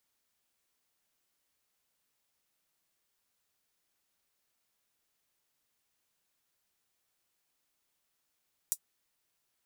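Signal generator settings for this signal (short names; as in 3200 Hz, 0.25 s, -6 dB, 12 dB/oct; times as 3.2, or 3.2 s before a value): closed hi-hat, high-pass 7500 Hz, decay 0.07 s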